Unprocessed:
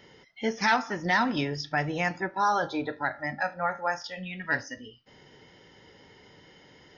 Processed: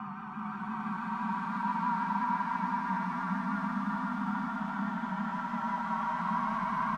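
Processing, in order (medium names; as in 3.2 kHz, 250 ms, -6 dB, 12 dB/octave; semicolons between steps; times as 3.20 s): in parallel at -3.5 dB: integer overflow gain 21.5 dB; on the sum: ring modulator 570 Hz; algorithmic reverb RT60 0.67 s, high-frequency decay 0.65×, pre-delay 120 ms, DRR -3.5 dB; Paulstretch 26×, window 0.10 s, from 2.35 s; two resonant band-passes 450 Hz, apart 2.3 oct; vibrato 6 Hz 48 cents; on a send: delay 413 ms -3.5 dB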